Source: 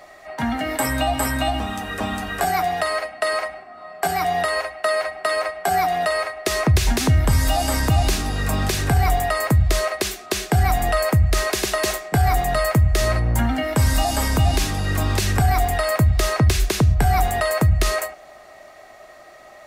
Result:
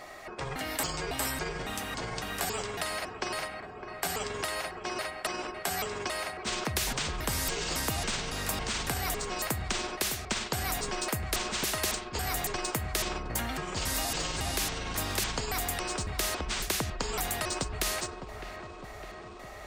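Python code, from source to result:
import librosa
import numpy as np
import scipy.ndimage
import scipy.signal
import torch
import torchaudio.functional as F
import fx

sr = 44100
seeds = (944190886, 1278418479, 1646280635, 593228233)

y = fx.pitch_trill(x, sr, semitones=-9.5, every_ms=277)
y = fx.echo_wet_lowpass(y, sr, ms=608, feedback_pct=49, hz=2600.0, wet_db=-17)
y = fx.spectral_comp(y, sr, ratio=2.0)
y = y * librosa.db_to_amplitude(-6.0)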